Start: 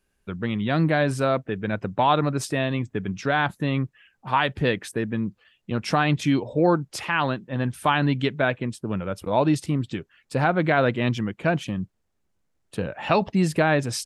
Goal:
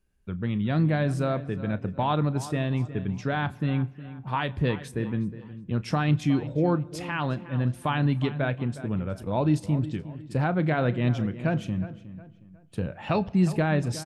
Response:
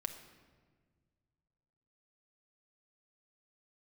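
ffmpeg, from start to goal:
-filter_complex "[0:a]lowshelf=frequency=230:gain=12,asplit=2[link_01][link_02];[link_02]adelay=363,lowpass=frequency=3300:poles=1,volume=-14.5dB,asplit=2[link_03][link_04];[link_04]adelay=363,lowpass=frequency=3300:poles=1,volume=0.36,asplit=2[link_05][link_06];[link_06]adelay=363,lowpass=frequency=3300:poles=1,volume=0.36[link_07];[link_01][link_03][link_05][link_07]amix=inputs=4:normalize=0,asplit=2[link_08][link_09];[1:a]atrim=start_sample=2205,adelay=33[link_10];[link_09][link_10]afir=irnorm=-1:irlink=0,volume=-14.5dB[link_11];[link_08][link_11]amix=inputs=2:normalize=0,volume=-8dB"

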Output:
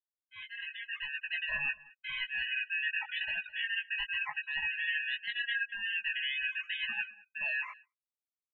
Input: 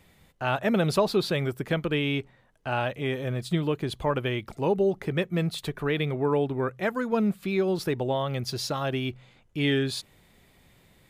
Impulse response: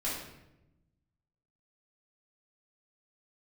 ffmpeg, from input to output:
-af "afftfilt=real='real(if(lt(b,920),b+92*(1-2*mod(floor(b/92),2)),b),0)':imag='imag(if(lt(b,920),b+92*(1-2*mod(floor(b/92),2)),b),0)':win_size=2048:overlap=0.75,afftdn=noise_reduction=34:noise_floor=-45,areverse,acompressor=threshold=-36dB:ratio=6,areverse,afftfilt=real='re*gte(hypot(re,im),0.0224)':imag='im*gte(hypot(re,im),0.0224)':win_size=1024:overlap=0.75,highpass=frequency=530:width_type=q:width=0.5412,highpass=frequency=530:width_type=q:width=1.307,lowpass=frequency=2700:width_type=q:width=0.5176,lowpass=frequency=2700:width_type=q:width=0.7071,lowpass=frequency=2700:width_type=q:width=1.932,afreqshift=-70,atempo=1.3,aeval=exprs='val(0)*sin(2*PI*490*n/s)':channel_layout=same,aecho=1:1:210:0.0841,dynaudnorm=framelen=160:gausssize=13:maxgain=9.5dB,agate=range=-33dB:threshold=-46dB:ratio=3:detection=peak,aecho=1:1:4.8:0.66,flanger=delay=17.5:depth=3.4:speed=0.86"

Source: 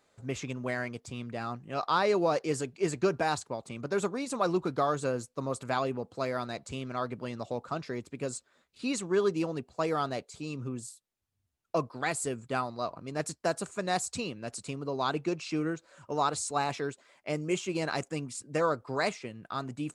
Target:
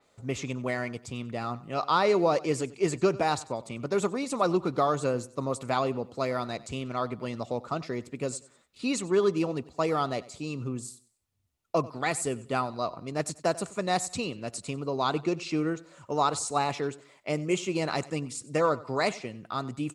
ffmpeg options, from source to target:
ffmpeg -i in.wav -filter_complex "[0:a]bandreject=frequency=1600:width=9,asplit=2[link_01][link_02];[link_02]aecho=0:1:94|188|282:0.106|0.035|0.0115[link_03];[link_01][link_03]amix=inputs=2:normalize=0,adynamicequalizer=threshold=0.00398:dfrequency=5200:dqfactor=0.7:tfrequency=5200:tqfactor=0.7:attack=5:release=100:ratio=0.375:range=1.5:mode=cutabove:tftype=highshelf,volume=3dB" out.wav

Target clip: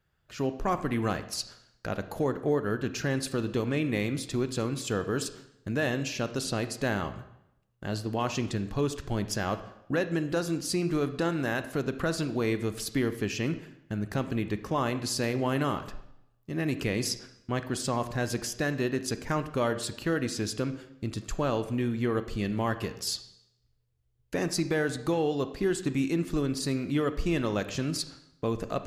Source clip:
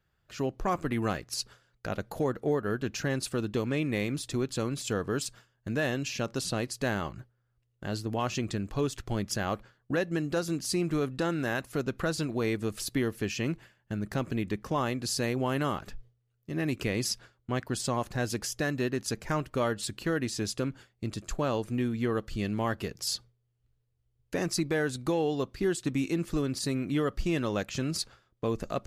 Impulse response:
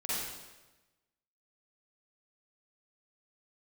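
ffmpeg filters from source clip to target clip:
-filter_complex "[0:a]asplit=2[link_01][link_02];[1:a]atrim=start_sample=2205,asetrate=61740,aresample=44100,lowpass=4800[link_03];[link_02][link_03]afir=irnorm=-1:irlink=0,volume=-12dB[link_04];[link_01][link_04]amix=inputs=2:normalize=0"

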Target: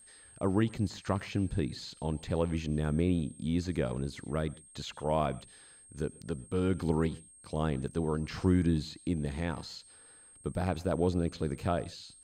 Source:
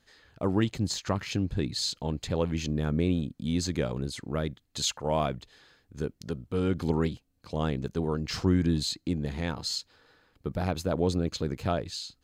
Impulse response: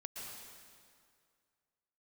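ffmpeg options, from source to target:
-filter_complex "[0:a]aeval=exprs='val(0)+0.00251*sin(2*PI*8500*n/s)':channel_layout=same,acrossover=split=2600[link_01][link_02];[link_02]acompressor=threshold=-45dB:ratio=4:attack=1:release=60[link_03];[link_01][link_03]amix=inputs=2:normalize=0,asplit=2[link_04][link_05];[1:a]atrim=start_sample=2205,afade=type=out:start_time=0.22:duration=0.01,atrim=end_sample=10143,asetrate=52920,aresample=44100[link_06];[link_05][link_06]afir=irnorm=-1:irlink=0,volume=-12dB[link_07];[link_04][link_07]amix=inputs=2:normalize=0,volume=-3dB"

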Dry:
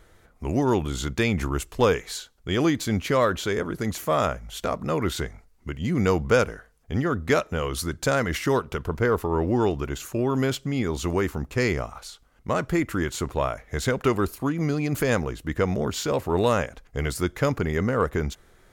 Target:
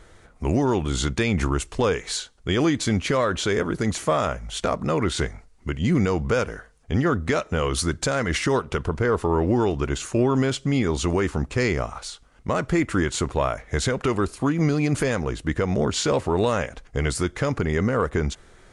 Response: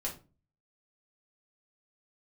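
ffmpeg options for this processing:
-af "alimiter=limit=-16dB:level=0:latency=1:release=184,volume=5dB" -ar 22050 -c:a libvorbis -b:a 48k

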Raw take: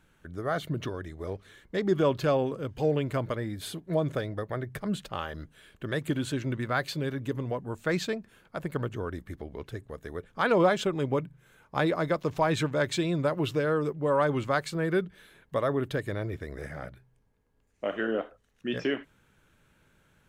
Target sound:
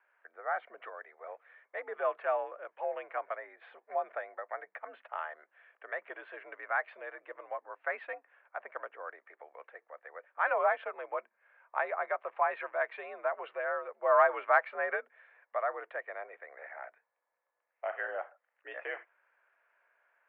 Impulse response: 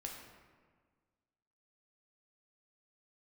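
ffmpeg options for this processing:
-filter_complex "[0:a]highpass=frequency=570:width_type=q:width=0.5412,highpass=frequency=570:width_type=q:width=1.307,lowpass=frequency=2200:width_type=q:width=0.5176,lowpass=frequency=2200:width_type=q:width=0.7071,lowpass=frequency=2200:width_type=q:width=1.932,afreqshift=64,asplit=3[link_01][link_02][link_03];[link_01]afade=type=out:start_time=14.02:duration=0.02[link_04];[link_02]acontrast=38,afade=type=in:start_time=14.02:duration=0.02,afade=type=out:start_time=14.95:duration=0.02[link_05];[link_03]afade=type=in:start_time=14.95:duration=0.02[link_06];[link_04][link_05][link_06]amix=inputs=3:normalize=0,volume=-2dB"

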